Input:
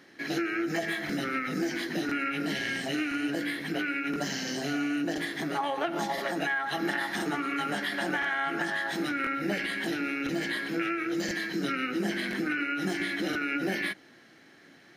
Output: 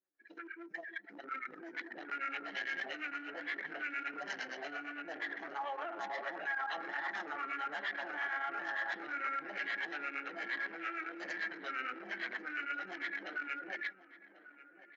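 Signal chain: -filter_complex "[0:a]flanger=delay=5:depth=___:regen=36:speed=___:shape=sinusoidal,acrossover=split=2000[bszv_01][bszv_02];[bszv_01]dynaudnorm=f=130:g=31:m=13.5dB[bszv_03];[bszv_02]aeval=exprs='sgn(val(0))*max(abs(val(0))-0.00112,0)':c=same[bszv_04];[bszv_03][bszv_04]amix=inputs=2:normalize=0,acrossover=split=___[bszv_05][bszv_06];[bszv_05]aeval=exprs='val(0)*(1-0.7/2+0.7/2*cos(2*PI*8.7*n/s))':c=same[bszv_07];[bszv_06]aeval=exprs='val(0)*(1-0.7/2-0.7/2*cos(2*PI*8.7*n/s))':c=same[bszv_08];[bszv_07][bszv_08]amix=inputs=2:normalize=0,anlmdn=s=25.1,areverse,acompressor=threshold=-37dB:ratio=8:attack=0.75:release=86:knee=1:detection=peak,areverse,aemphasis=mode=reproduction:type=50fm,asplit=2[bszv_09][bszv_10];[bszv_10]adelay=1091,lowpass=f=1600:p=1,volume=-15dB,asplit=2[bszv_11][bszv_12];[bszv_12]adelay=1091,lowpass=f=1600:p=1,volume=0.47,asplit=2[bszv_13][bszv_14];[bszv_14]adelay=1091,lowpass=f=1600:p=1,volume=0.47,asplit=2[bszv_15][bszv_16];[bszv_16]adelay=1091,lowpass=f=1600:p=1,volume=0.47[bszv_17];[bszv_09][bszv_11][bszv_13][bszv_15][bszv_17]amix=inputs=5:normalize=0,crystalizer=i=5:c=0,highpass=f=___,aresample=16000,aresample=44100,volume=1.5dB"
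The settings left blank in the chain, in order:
5.3, 1.4, 430, 650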